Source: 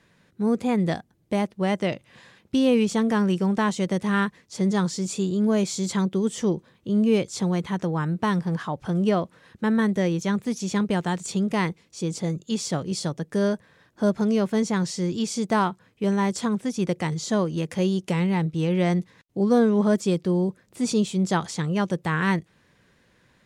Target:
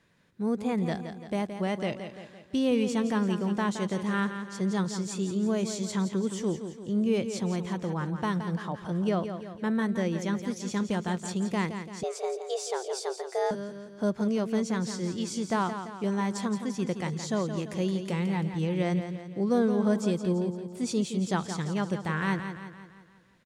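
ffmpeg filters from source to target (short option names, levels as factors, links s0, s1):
-filter_complex "[0:a]aecho=1:1:170|340|510|680|850|1020:0.355|0.181|0.0923|0.0471|0.024|0.0122,asettb=1/sr,asplit=3[s0][s1][s2];[s0]atrim=end=12.034[s3];[s1]atrim=start=12.03:end=13.51,asetpts=PTS-STARTPTS,afade=t=in:d=0.004:c=qsin,afade=t=out:st=1.476:d=0.004:c=qsin,afreqshift=250[s4];[s2]atrim=start=13.506[s5];[s3][s4]acrossfade=d=0.004:c1=hsin:c2=qsin[s6];[s6][s5]acrossfade=d=0.004:c1=qsin:c2=hsin,volume=0.501"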